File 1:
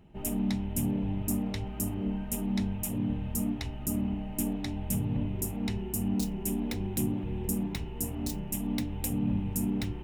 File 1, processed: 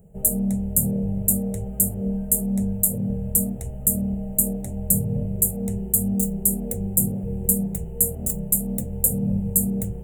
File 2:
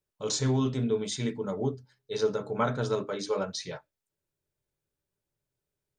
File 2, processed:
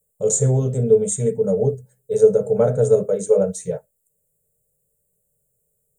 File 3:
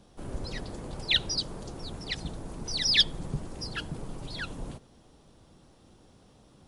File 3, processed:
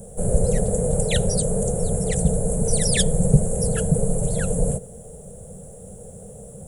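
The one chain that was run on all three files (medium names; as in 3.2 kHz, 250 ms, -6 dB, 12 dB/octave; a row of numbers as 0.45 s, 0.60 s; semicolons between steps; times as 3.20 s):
FFT filter 120 Hz 0 dB, 190 Hz +4 dB, 320 Hz -21 dB, 460 Hz +9 dB, 730 Hz -3 dB, 1 kHz -19 dB, 1.6 kHz -15 dB, 3.4 kHz -22 dB, 5 kHz -26 dB, 7.5 kHz +11 dB; peak normalisation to -2 dBFS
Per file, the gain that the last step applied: +5.5 dB, +10.0 dB, +17.0 dB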